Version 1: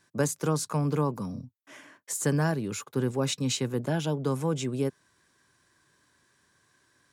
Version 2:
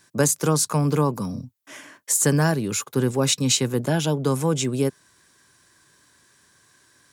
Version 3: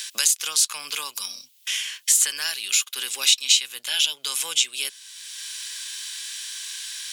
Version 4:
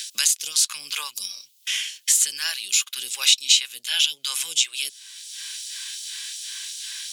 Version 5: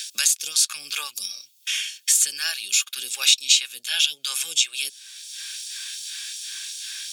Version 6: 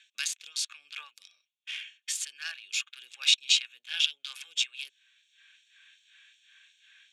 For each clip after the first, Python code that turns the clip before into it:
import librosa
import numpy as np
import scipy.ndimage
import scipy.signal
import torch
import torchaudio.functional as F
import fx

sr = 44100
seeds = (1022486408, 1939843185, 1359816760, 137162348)

y1 = fx.high_shelf(x, sr, hz=4400.0, db=7.5)
y1 = y1 * librosa.db_to_amplitude(6.0)
y2 = fx.hpss(y1, sr, part='harmonic', gain_db=4)
y2 = fx.highpass_res(y2, sr, hz=3000.0, q=2.6)
y2 = fx.band_squash(y2, sr, depth_pct=70)
y2 = y2 * librosa.db_to_amplitude(4.0)
y3 = fx.phaser_stages(y2, sr, stages=2, low_hz=160.0, high_hz=1300.0, hz=2.7, feedback_pct=40)
y3 = y3 * librosa.db_to_amplitude(-1.0)
y4 = fx.notch_comb(y3, sr, f0_hz=1000.0)
y4 = y4 * librosa.db_to_amplitude(1.5)
y5 = fx.wiener(y4, sr, points=9)
y5 = fx.bandpass_q(y5, sr, hz=2600.0, q=0.97)
y5 = fx.band_widen(y5, sr, depth_pct=40)
y5 = y5 * librosa.db_to_amplitude(-5.5)